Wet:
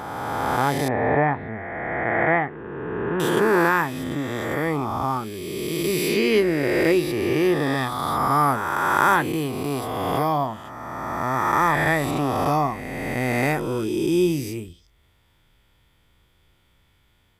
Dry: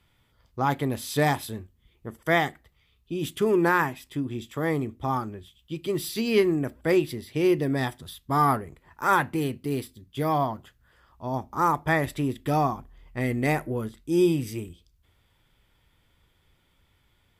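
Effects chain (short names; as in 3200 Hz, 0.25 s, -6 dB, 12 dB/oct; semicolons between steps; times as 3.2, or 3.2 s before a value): spectral swells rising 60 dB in 2.59 s; 0.88–3.2 steep low-pass 2200 Hz 36 dB/oct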